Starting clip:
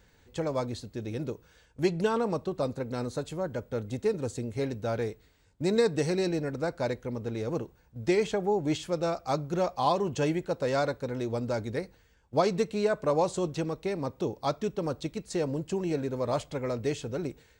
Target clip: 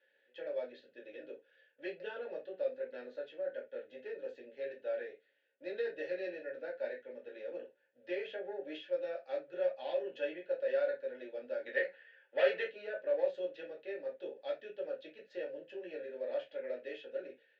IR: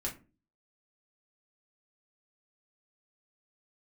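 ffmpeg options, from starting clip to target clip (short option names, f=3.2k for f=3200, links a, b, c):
-filter_complex "[0:a]asettb=1/sr,asplit=3[a][b][c];[a]atrim=end=11.664[d];[b]atrim=start=11.66:end=12.67,asetpts=PTS-STARTPTS,afade=t=in:d=0.004:c=qsin,afade=t=out:st=1.006:d=0.004:c=qsin,equalizer=f=1.6k:w=0.39:g=15[e];[c]atrim=start=12.666[f];[d][e]acrossfade=d=0.004:c1=hsin:c2=qsin[g];[g][f]acrossfade=d=0.004:c1=qsin:c2=hsin,asoftclip=type=tanh:threshold=-15.5dB,asplit=3[h][i][j];[h]bandpass=f=530:t=q:w=8,volume=0dB[k];[i]bandpass=f=1.84k:t=q:w=8,volume=-6dB[l];[j]bandpass=f=2.48k:t=q:w=8,volume=-9dB[m];[k][l][m]amix=inputs=3:normalize=0,highpass=410,equalizer=f=500:t=q:w=4:g=-5,equalizer=f=1k:t=q:w=4:g=4,equalizer=f=1.5k:t=q:w=4:g=7,equalizer=f=3.3k:t=q:w=4:g=8,lowpass=f=5k:w=0.5412,lowpass=f=5k:w=1.3066[n];[1:a]atrim=start_sample=2205,atrim=end_sample=3969[o];[n][o]afir=irnorm=-1:irlink=0"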